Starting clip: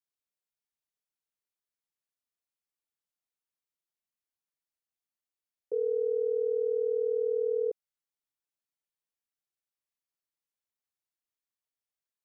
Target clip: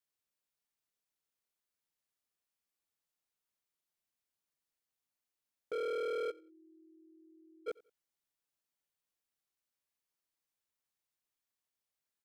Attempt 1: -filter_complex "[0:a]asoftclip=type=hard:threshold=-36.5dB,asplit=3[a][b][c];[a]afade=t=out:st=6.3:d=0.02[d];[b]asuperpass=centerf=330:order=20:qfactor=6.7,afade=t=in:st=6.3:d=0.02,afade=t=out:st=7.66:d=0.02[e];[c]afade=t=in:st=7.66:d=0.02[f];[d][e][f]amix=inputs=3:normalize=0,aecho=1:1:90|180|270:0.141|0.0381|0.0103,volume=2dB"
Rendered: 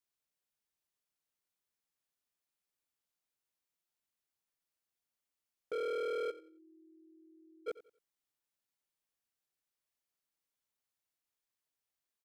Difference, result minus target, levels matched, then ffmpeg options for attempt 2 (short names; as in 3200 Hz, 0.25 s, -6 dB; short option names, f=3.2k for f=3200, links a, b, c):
echo-to-direct +6.5 dB
-filter_complex "[0:a]asoftclip=type=hard:threshold=-36.5dB,asplit=3[a][b][c];[a]afade=t=out:st=6.3:d=0.02[d];[b]asuperpass=centerf=330:order=20:qfactor=6.7,afade=t=in:st=6.3:d=0.02,afade=t=out:st=7.66:d=0.02[e];[c]afade=t=in:st=7.66:d=0.02[f];[d][e][f]amix=inputs=3:normalize=0,aecho=1:1:90|180:0.0668|0.018,volume=2dB"